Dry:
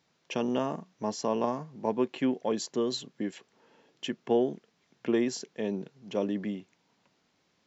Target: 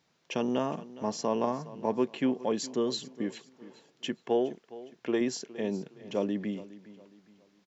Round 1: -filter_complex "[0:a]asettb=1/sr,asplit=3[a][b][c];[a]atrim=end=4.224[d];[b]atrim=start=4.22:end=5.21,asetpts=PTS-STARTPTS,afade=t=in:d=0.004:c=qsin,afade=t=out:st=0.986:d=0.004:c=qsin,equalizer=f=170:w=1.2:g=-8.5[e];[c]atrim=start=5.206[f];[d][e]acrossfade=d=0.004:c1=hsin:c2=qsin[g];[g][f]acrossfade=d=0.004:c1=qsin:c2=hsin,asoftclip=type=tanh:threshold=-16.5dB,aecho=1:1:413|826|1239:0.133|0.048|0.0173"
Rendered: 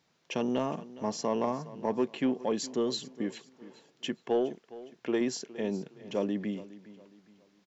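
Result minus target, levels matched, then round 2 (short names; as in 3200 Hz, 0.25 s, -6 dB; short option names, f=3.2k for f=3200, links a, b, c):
soft clip: distortion +21 dB
-filter_complex "[0:a]asettb=1/sr,asplit=3[a][b][c];[a]atrim=end=4.224[d];[b]atrim=start=4.22:end=5.21,asetpts=PTS-STARTPTS,afade=t=in:d=0.004:c=qsin,afade=t=out:st=0.986:d=0.004:c=qsin,equalizer=f=170:w=1.2:g=-8.5[e];[c]atrim=start=5.206[f];[d][e]acrossfade=d=0.004:c1=hsin:c2=qsin[g];[g][f]acrossfade=d=0.004:c1=qsin:c2=hsin,asoftclip=type=tanh:threshold=-5dB,aecho=1:1:413|826|1239:0.133|0.048|0.0173"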